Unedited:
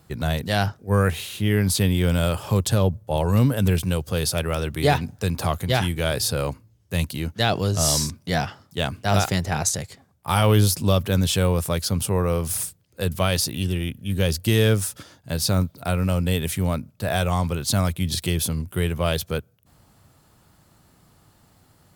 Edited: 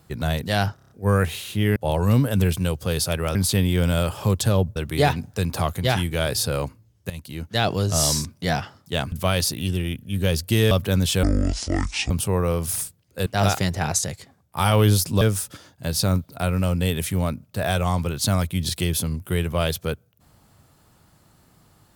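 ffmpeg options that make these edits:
-filter_complex "[0:a]asplit=16[a][b][c][d][e][f][g][h][i][j][k][l][m][n][o][p];[a]atrim=end=0.782[q];[b]atrim=start=0.748:end=0.782[r];[c]atrim=start=0.748:end=0.782[s];[d]atrim=start=0.748:end=0.782[t];[e]atrim=start=0.748:end=0.782[u];[f]atrim=start=0.748:end=1.612[v];[g]atrim=start=3.018:end=4.612[w];[h]atrim=start=1.608:end=3.022[x];[i]atrim=start=4.608:end=6.95,asetpts=PTS-STARTPTS,afade=t=out:st=2.338:d=0.004:c=hsin:silence=0.149624[y];[j]atrim=start=6.95:end=8.972,asetpts=PTS-STARTPTS,afade=t=in:d=0.55:silence=0.149624[z];[k]atrim=start=13.078:end=14.672[aa];[l]atrim=start=10.918:end=11.444[ab];[m]atrim=start=11.44:end=11.92,asetpts=PTS-STARTPTS,asetrate=24255,aresample=44100,atrim=end_sample=38487,asetpts=PTS-STARTPTS[ac];[n]atrim=start=11.916:end=13.082[ad];[o]atrim=start=8.968:end=10.922[ae];[p]atrim=start=14.668[af];[q][r]acrossfade=d=0.004:c1=hsin:c2=hsin[ag];[ag][s]acrossfade=d=0.004:c1=hsin:c2=hsin[ah];[ah][t]acrossfade=d=0.004:c1=hsin:c2=hsin[ai];[ai][u]acrossfade=d=0.004:c1=hsin:c2=hsin[aj];[aj][v]acrossfade=d=0.004:c1=hsin:c2=hsin[ak];[ak][w]acrossfade=d=0.004:c1=hsin:c2=hsin[al];[al][x]acrossfade=d=0.004:c1=hsin:c2=hsin[am];[y][z]concat=n=2:v=0:a=1[an];[am][an]acrossfade=d=0.004:c1=hsin:c2=hsin[ao];[ao][aa]acrossfade=d=0.004:c1=hsin:c2=hsin[ap];[ap][ab]acrossfade=d=0.004:c1=hsin:c2=hsin[aq];[aq][ac]acrossfade=d=0.004:c1=hsin:c2=hsin[ar];[ar][ad]acrossfade=d=0.004:c1=hsin:c2=hsin[as];[as][ae]acrossfade=d=0.004:c1=hsin:c2=hsin[at];[at][af]acrossfade=d=0.004:c1=hsin:c2=hsin"

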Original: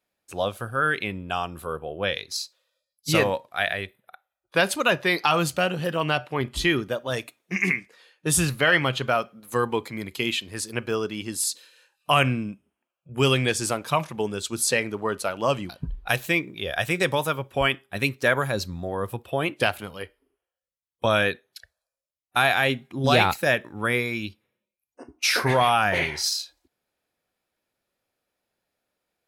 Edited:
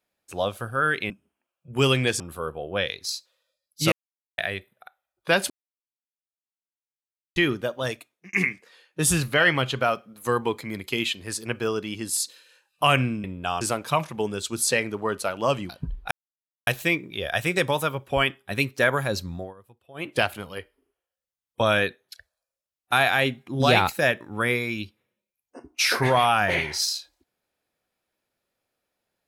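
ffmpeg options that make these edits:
-filter_complex "[0:a]asplit=13[a][b][c][d][e][f][g][h][i][j][k][l][m];[a]atrim=end=1.102[n];[b]atrim=start=12.508:end=13.612[o];[c]atrim=start=1.468:end=3.19,asetpts=PTS-STARTPTS,afade=t=out:st=1.718:d=0.004:c=hsin[p];[d]atrim=start=3.19:end=3.65,asetpts=PTS-STARTPTS,volume=0[q];[e]atrim=start=3.65:end=4.77,asetpts=PTS-STARTPTS,afade=t=in:d=0.004:c=hsin,afade=t=out:st=1.116:d=0.004:c=hsin[r];[f]atrim=start=4.77:end=6.63,asetpts=PTS-STARTPTS,volume=0[s];[g]atrim=start=6.63:end=7.6,asetpts=PTS-STARTPTS,afade=t=in:d=0.004:c=hsin,afade=t=out:st=0.5:d=0.47[t];[h]atrim=start=7.6:end=12.512,asetpts=PTS-STARTPTS,afade=t=in:d=0.004:c=hsin[u];[i]atrim=start=1.098:end=1.472[v];[j]atrim=start=13.608:end=16.11,asetpts=PTS-STARTPTS,afade=t=out:st=2.498:d=0.004:c=hsin,apad=pad_dur=0.56[w];[k]atrim=start=16.11:end=18.98,asetpts=PTS-STARTPTS,afade=t=in:d=0.004:c=hsin,afade=t=out:st=2.69:d=0.18:silence=0.0794328[x];[l]atrim=start=18.98:end=19.38,asetpts=PTS-STARTPTS,volume=-22dB[y];[m]atrim=start=19.38,asetpts=PTS-STARTPTS,afade=t=in:d=0.18:silence=0.0794328[z];[n][o]acrossfade=d=0.004:c1=hsin:c2=hsin[aa];[p][q][r][s][t][u]concat=n=6:v=0:a=1[ab];[aa][ab]acrossfade=d=0.004:c1=hsin:c2=hsin[ac];[ac][v]acrossfade=d=0.004:c1=hsin:c2=hsin[ad];[w][x][y][z]concat=n=4:v=0:a=1[ae];[ad][ae]acrossfade=d=0.004:c1=hsin:c2=hsin"

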